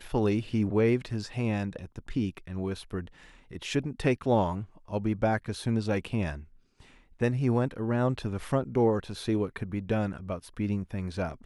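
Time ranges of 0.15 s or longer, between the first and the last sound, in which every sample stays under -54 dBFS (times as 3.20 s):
6.59–6.80 s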